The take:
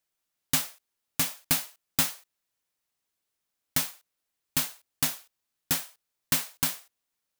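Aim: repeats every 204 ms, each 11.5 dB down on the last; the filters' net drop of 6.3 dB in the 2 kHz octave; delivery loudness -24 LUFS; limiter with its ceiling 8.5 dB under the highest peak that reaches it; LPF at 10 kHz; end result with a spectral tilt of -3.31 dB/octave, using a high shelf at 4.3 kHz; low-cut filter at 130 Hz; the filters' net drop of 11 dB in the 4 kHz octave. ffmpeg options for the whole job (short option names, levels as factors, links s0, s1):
-af "highpass=130,lowpass=10000,equalizer=f=2000:t=o:g=-4,equalizer=f=4000:t=o:g=-8.5,highshelf=f=4300:g=-8,alimiter=level_in=1.19:limit=0.0631:level=0:latency=1,volume=0.841,aecho=1:1:204|408|612:0.266|0.0718|0.0194,volume=9.44"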